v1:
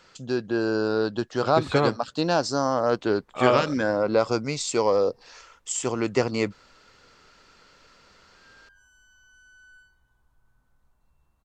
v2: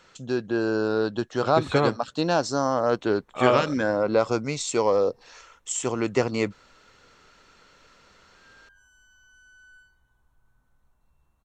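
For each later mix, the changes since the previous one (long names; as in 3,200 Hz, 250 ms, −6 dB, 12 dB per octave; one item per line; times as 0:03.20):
master: add notch filter 4,800 Hz, Q 8.3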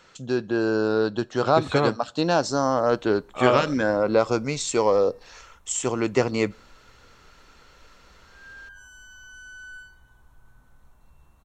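first voice: send on
background +11.5 dB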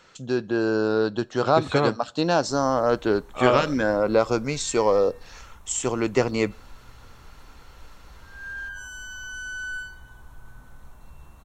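background +9.5 dB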